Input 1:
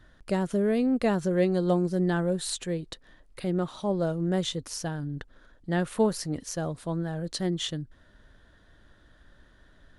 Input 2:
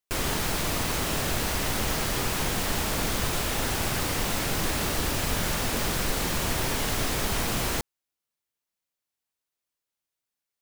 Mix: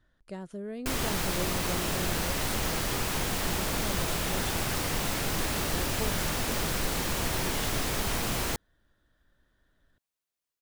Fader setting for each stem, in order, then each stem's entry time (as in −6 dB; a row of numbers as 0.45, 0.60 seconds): −13.0, −2.5 decibels; 0.00, 0.75 seconds